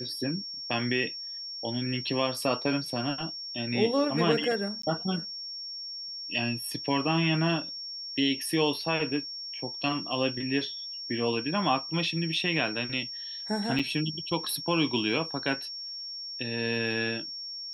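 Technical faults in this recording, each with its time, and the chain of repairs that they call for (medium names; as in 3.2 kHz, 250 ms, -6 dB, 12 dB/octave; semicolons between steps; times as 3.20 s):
whine 5.5 kHz -36 dBFS
4.82–4.83 s: dropout 14 ms
13.79–13.80 s: dropout 5.8 ms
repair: band-stop 5.5 kHz, Q 30; interpolate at 4.82 s, 14 ms; interpolate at 13.79 s, 5.8 ms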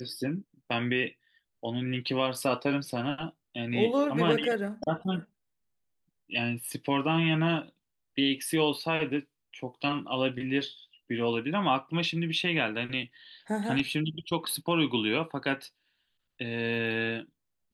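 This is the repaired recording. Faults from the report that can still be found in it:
nothing left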